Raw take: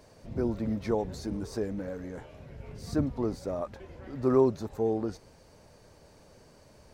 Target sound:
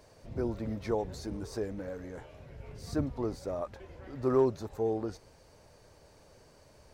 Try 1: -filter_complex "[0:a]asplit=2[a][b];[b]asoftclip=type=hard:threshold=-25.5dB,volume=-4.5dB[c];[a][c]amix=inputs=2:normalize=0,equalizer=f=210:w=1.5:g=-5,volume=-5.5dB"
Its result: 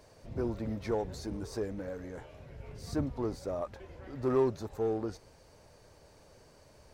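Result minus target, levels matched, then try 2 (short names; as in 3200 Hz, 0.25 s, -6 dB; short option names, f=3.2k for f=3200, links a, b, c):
hard clip: distortion +16 dB
-filter_complex "[0:a]asplit=2[a][b];[b]asoftclip=type=hard:threshold=-16dB,volume=-4.5dB[c];[a][c]amix=inputs=2:normalize=0,equalizer=f=210:w=1.5:g=-5,volume=-5.5dB"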